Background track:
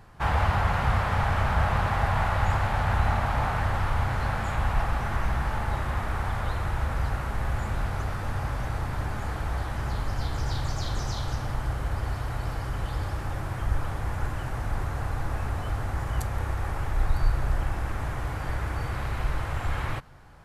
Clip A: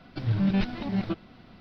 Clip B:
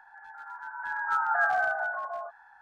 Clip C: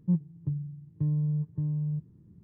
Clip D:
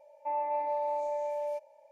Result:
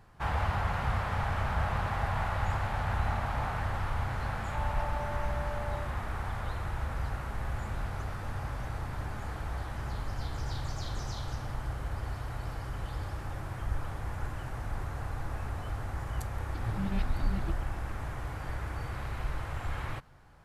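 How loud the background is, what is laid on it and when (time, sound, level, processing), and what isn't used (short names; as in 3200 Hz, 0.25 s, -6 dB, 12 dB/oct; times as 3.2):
background track -6.5 dB
4.28 add D -8 dB
16.38 add A -10.5 dB
not used: B, C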